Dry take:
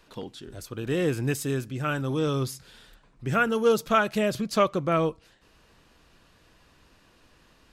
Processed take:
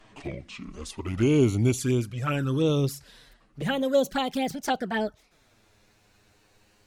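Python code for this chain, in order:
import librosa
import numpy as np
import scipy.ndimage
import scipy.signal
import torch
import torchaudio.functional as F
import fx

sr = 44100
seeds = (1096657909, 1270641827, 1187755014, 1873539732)

y = fx.speed_glide(x, sr, from_pct=66, to_pct=159)
y = fx.rider(y, sr, range_db=5, speed_s=2.0)
y = fx.env_flanger(y, sr, rest_ms=10.2, full_db=-21.0)
y = y * librosa.db_to_amplitude(2.0)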